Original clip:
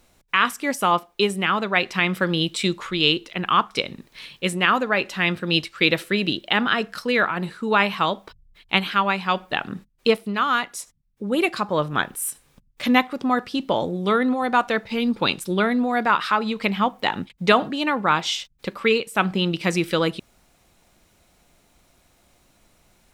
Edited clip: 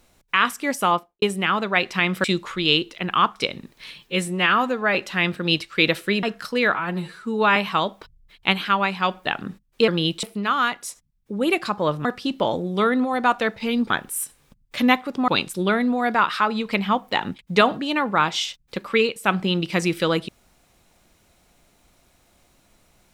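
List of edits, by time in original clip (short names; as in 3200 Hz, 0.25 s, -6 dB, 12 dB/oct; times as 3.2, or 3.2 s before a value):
0.88–1.22 studio fade out
2.24–2.59 move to 10.14
4.34–4.98 stretch 1.5×
6.26–6.76 cut
7.28–7.82 stretch 1.5×
11.96–13.34 move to 15.19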